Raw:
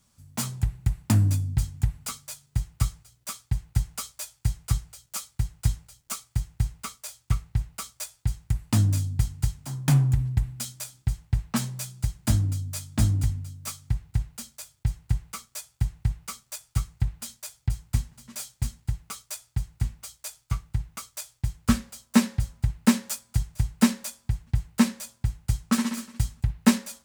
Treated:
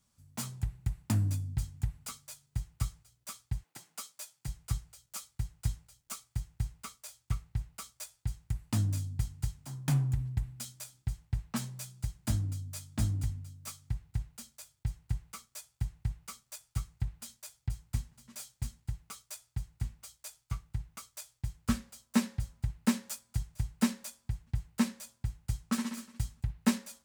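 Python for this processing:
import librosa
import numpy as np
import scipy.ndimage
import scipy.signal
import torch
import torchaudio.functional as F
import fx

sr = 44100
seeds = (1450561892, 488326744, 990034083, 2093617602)

y = fx.highpass(x, sr, hz=fx.line((3.62, 310.0), (4.47, 130.0)), slope=24, at=(3.62, 4.47), fade=0.02)
y = y * librosa.db_to_amplitude(-8.5)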